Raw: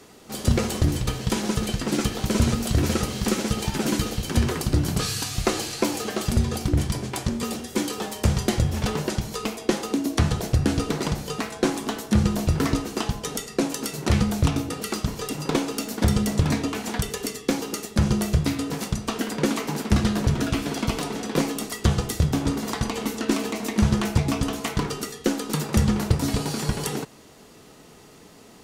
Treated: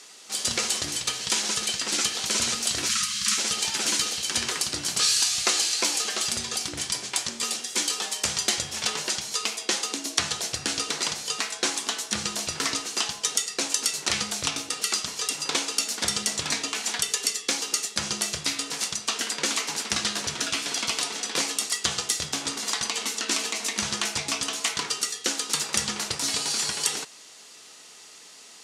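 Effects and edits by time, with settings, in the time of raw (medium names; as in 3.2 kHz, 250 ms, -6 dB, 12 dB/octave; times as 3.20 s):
2.89–3.38 s: brick-wall FIR band-stop 240–1000 Hz
whole clip: frequency weighting ITU-R 468; trim -3 dB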